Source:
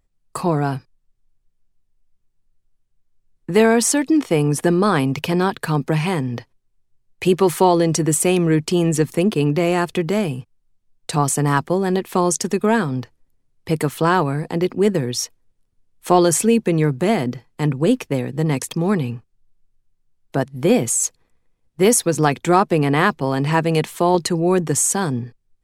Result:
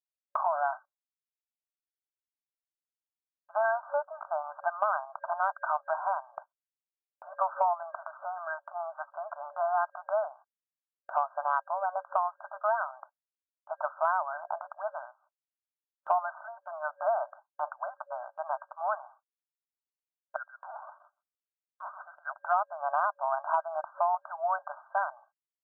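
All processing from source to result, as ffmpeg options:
-filter_complex "[0:a]asettb=1/sr,asplit=3[a][b][c];[a]atrim=end=7.824[d];[b]atrim=start=7.82:end=8.48,asetpts=PTS-STARTPTS,afade=t=in:d=0.004:c=qsin,afade=t=out:st=0.656:d=0.004:c=qsin,lowpass=2.9k,equalizer=f=1.5k:w=1.2:g=5.5,acompressor=threshold=-20dB:ratio=2.5:attack=3.2:release=140:knee=1:detection=peak[e];[c]atrim=start=8.476[f];[d][e]acrossfade=d=0.004:c1=hsin:c2=qsin[g];[g][f]acrossfade=d=0.004:c1=qsin:c2=hsin,asettb=1/sr,asplit=3[h][i][j];[h]atrim=end=20.364[k];[i]atrim=start=20.36:end=22.34,asetpts=PTS-STARTPTS,afade=t=in:d=0.004:c=qsin,afade=t=out:st=1.976:d=0.004:c=qsin,lowpass=f=2.7k:t=q:w=0.5098,lowpass=f=2.7k:t=q:w=0.6013,lowpass=f=2.7k:t=q:w=0.9,lowpass=f=2.7k:t=q:w=2.563,afreqshift=-3200,acompressor=threshold=-21dB:ratio=4:attack=3.2:release=140:knee=1:detection=peak,aecho=1:1:130:0.422,atrim=end_sample=87318[l];[j]atrim=start=22.336[m];[k][l]acrossfade=d=0.004:c1=hsin:c2=qsin[n];[n][m]acrossfade=d=0.004:c1=qsin:c2=hsin,afftfilt=real='re*between(b*sr/4096,570,1600)':imag='im*between(b*sr/4096,570,1600)':win_size=4096:overlap=0.75,agate=range=-33dB:threshold=-45dB:ratio=3:detection=peak,acompressor=threshold=-24dB:ratio=6"

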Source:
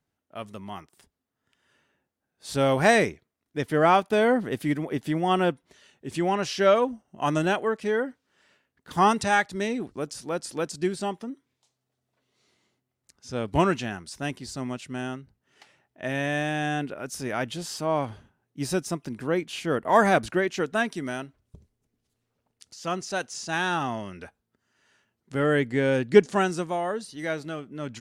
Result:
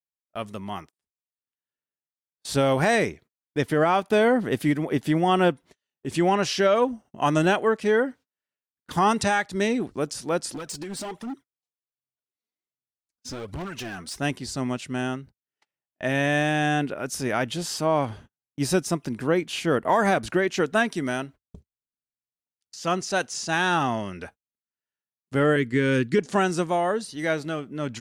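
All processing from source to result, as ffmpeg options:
-filter_complex "[0:a]asettb=1/sr,asplit=3[a][b][c];[a]atrim=end=10.544[d];[b]atrim=start=10.54:end=14.19,asetpts=PTS-STARTPTS,afade=t=in:d=0.004:c=qsin,afade=t=out:st=3.646:d=0.004:c=qsin,acompressor=threshold=-32dB:ratio=20:attack=3.2:release=140:knee=1:detection=peak,aphaser=in_gain=1:out_gain=1:delay=4.6:decay=0.6:speed=1.3:type=triangular,volume=34.5dB,asoftclip=hard,volume=-34.5dB[e];[c]atrim=start=14.186[f];[d][e]acrossfade=d=0.004:c1=hsin:c2=qsin[g];[g][f]acrossfade=d=0.004:c1=qsin:c2=hsin,asettb=1/sr,asplit=3[h][i][j];[h]atrim=end=25.564[k];[i]atrim=start=25.56:end=26.19,asetpts=PTS-STARTPTS,afade=t=in:d=0.004:c=qsin,afade=t=out:st=0.626:d=0.004:c=qsin,asuperstop=centerf=700:order=4:qfactor=1.2,agate=range=-33dB:threshold=-37dB:ratio=3:release=100:detection=peak[l];[j]atrim=start=26.186[m];[k][l]acrossfade=d=0.004:c1=hsin:c2=qsin[n];[n][m]acrossfade=d=0.004:c1=qsin:c2=hsin,agate=range=-36dB:threshold=-48dB:ratio=16:detection=peak,alimiter=limit=-16dB:level=0:latency=1:release=182,volume=4.5dB"

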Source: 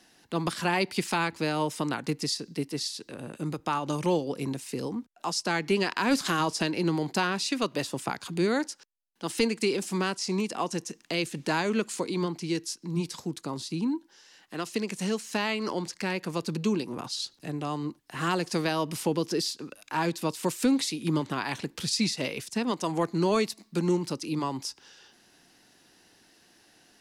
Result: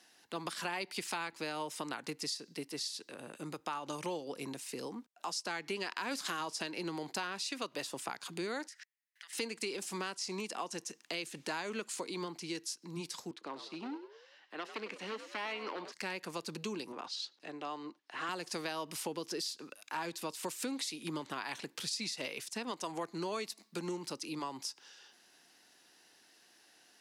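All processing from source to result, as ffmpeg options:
-filter_complex "[0:a]asettb=1/sr,asplit=3[a][b][c];[a]atrim=end=8.684[d];[b]atrim=start=8.68:end=9.33,asetpts=PTS-STARTPTS,afade=t=in:d=0.004:c=qsin,afade=t=out:st=0.646:d=0.004:c=qsin,acompressor=threshold=-42dB:ratio=16:attack=3.2:release=140:knee=1:detection=peak,highpass=f=1.9k:t=q:w=8.6[e];[c]atrim=start=9.326[f];[d][e]acrossfade=d=0.004:c1=hsin:c2=qsin[g];[g][f]acrossfade=d=0.004:c1=qsin:c2=hsin,asettb=1/sr,asplit=3[h][i][j];[h]atrim=end=13.314[k];[i]atrim=start=13.31:end=15.92,asetpts=PTS-STARTPTS,afade=t=in:d=0.004:c=qsin,afade=t=out:st=2.606:d=0.004:c=qsin,aeval=exprs='0.0631*(abs(mod(val(0)/0.0631+3,4)-2)-1)':c=same,acrossover=split=220 4000:gain=0.141 1 0.0794[l][m][n];[l][m][n]amix=inputs=3:normalize=0,asplit=5[o][p][q][r][s];[p]adelay=99,afreqshift=65,volume=-12dB[t];[q]adelay=198,afreqshift=130,volume=-19.3dB[u];[r]adelay=297,afreqshift=195,volume=-26.7dB[v];[s]adelay=396,afreqshift=260,volume=-34dB[w];[o][t][u][v][w]amix=inputs=5:normalize=0,atrim=end_sample=115101[x];[j]atrim=start=15.916[y];[k][x]acrossfade=d=0.004:c1=hsin:c2=qsin[z];[z][y]acrossfade=d=0.004:c1=qsin:c2=hsin,asettb=1/sr,asplit=3[aa][ab][ac];[aa]atrim=end=16.924[ad];[ab]atrim=start=16.92:end=18.29,asetpts=PTS-STARTPTS,afade=t=in:d=0.004:c=qsin,afade=t=out:st=1.366:d=0.004:c=qsin,highpass=260,lowpass=4.6k,asoftclip=type=hard:threshold=-19.5dB[ae];[ac]atrim=start=18.286[af];[ad][ae]acrossfade=d=0.004:c1=hsin:c2=qsin[ag];[ag][af]acrossfade=d=0.004:c1=qsin:c2=hsin,highpass=f=580:p=1,acompressor=threshold=-33dB:ratio=3,volume=-3dB"

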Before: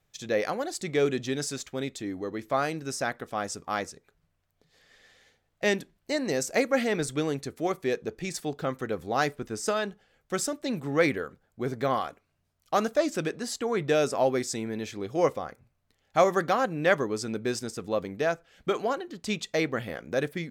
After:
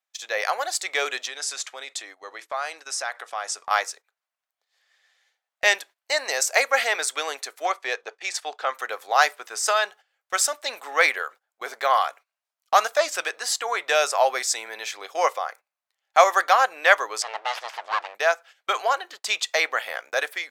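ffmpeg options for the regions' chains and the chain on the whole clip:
-filter_complex "[0:a]asettb=1/sr,asplit=3[a][b][c];[a]atrim=end=1.264[d];[b]atrim=start=1.26:end=3.71,asetpts=PTS-STARTPTS,afade=t=in:d=0.004:c=qsin,afade=t=out:st=2.446:d=0.004:c=qsin,lowpass=f=11k:w=0.5412,lowpass=f=11k:w=1.3066,acompressor=threshold=-34dB:ratio=3:attack=3.2:release=140:knee=1:detection=peak[e];[c]atrim=start=3.706[f];[d][e]acrossfade=d=0.004:c1=hsin:c2=qsin[g];[g][f]acrossfade=d=0.004:c1=qsin:c2=hsin,asettb=1/sr,asplit=3[h][i][j];[h]atrim=end=7.654[k];[i]atrim=start=7.65:end=8.75,asetpts=PTS-STARTPTS,afade=t=in:d=0.004:c=qsin,afade=t=out:st=1.096:d=0.004:c=qsin,asubboost=boost=7.5:cutoff=86,adynamicsmooth=sensitivity=1.5:basefreq=7.3k,agate=range=-6dB:threshold=-45dB:ratio=16:release=100:detection=peak[l];[j]atrim=start=8.746[m];[k][l]acrossfade=d=0.004:c1=hsin:c2=qsin[n];[n][m]acrossfade=d=0.004:c1=qsin:c2=hsin,asettb=1/sr,asplit=3[o][p][q];[o]atrim=end=17.224[r];[p]atrim=start=17.22:end=18.15,asetpts=PTS-STARTPTS,afade=t=in:d=0.004:c=qsin,afade=t=out:st=0.926:d=0.004:c=qsin,aeval=exprs='abs(val(0))':c=same,acompressor=mode=upward:threshold=-34dB:ratio=2.5:attack=3.2:release=140:knee=2.83:detection=peak,lowpass=4.4k[s];[q]atrim=start=18.146[t];[r][s]acrossfade=d=0.004:c1=hsin:c2=qsin[u];[u][t]acrossfade=d=0.004:c1=qsin:c2=hsin,highpass=f=710:w=0.5412,highpass=f=710:w=1.3066,agate=range=-16dB:threshold=-52dB:ratio=16:detection=peak,dynaudnorm=f=280:g=3:m=4dB,volume=6dB"

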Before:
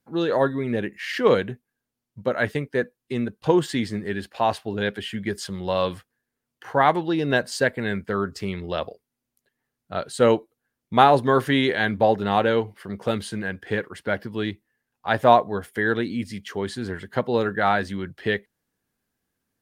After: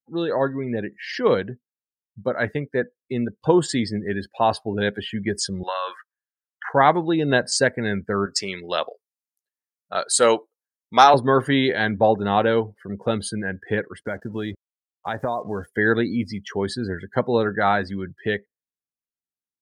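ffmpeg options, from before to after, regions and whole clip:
-filter_complex "[0:a]asettb=1/sr,asplit=3[a][b][c];[a]atrim=end=5.634[d];[b]atrim=start=5.63:end=6.69,asetpts=PTS-STARTPTS,afade=t=in:d=0.004:c=qsin,afade=t=out:st=1.056:d=0.004:c=qsin,highpass=760,equalizer=f=1.5k:w=0.95:g=11.5,acompressor=threshold=-23dB:ratio=16:attack=3.2:release=140:knee=1:detection=peak[e];[c]atrim=start=6.686[f];[d][e]acrossfade=d=0.004:c1=hsin:c2=qsin[g];[g][f]acrossfade=d=0.004:c1=qsin:c2=hsin,asettb=1/sr,asplit=3[h][i][j];[h]atrim=end=8.264[k];[i]atrim=start=8.26:end=11.14,asetpts=PTS-STARTPTS,afade=t=in:d=0.004:c=qsin,afade=t=out:st=2.876:d=0.004:c=qsin,highpass=f=1.1k:p=1,acontrast=87[l];[j]atrim=start=11.136[m];[k][l]acrossfade=d=0.004:c1=hsin:c2=qsin[n];[n][m]acrossfade=d=0.004:c1=qsin:c2=hsin,asettb=1/sr,asplit=3[o][p][q];[o]atrim=end=14.034[r];[p]atrim=start=14.03:end=15.66,asetpts=PTS-STARTPTS,afade=t=in:d=0.004:c=qsin,afade=t=out:st=1.626:d=0.004:c=qsin,acompressor=threshold=-25dB:ratio=6:attack=3.2:release=140:knee=1:detection=peak,acrusher=bits=6:mix=0:aa=0.5[s];[q]atrim=start=15.656[t];[r][s]acrossfade=d=0.004:c1=hsin:c2=qsin[u];[u][t]acrossfade=d=0.004:c1=qsin:c2=hsin,afftdn=nr=27:nf=-39,highshelf=f=4.3k:t=q:w=1.5:g=7.5,dynaudnorm=f=490:g=13:m=11.5dB,volume=-1dB"

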